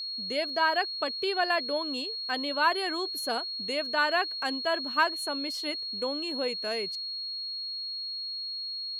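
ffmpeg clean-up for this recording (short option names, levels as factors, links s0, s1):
-af "bandreject=f=4300:w=30"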